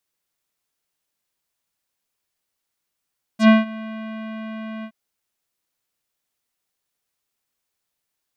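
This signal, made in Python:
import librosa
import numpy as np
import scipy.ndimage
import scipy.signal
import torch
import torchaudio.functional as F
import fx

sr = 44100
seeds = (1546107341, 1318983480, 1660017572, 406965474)

y = fx.sub_voice(sr, note=57, wave='square', cutoff_hz=2800.0, q=1.0, env_oct=2.5, env_s=0.07, attack_ms=88.0, decay_s=0.17, sustain_db=-22, release_s=0.07, note_s=1.45, slope=24)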